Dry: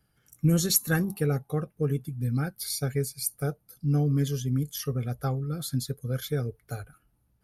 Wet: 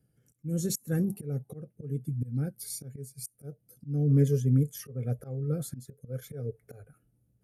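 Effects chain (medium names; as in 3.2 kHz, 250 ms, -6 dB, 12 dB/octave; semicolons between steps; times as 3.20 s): time-frequency box 4.09–6.99 s, 390–2700 Hz +6 dB; slow attack 303 ms; graphic EQ 125/250/500/1000/4000/8000 Hz +11/+7/+10/-9/-7/+7 dB; trim -8.5 dB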